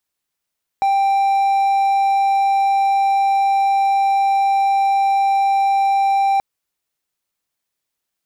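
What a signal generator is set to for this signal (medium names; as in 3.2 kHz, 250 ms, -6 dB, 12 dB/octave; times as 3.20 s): tone triangle 787 Hz -11 dBFS 5.58 s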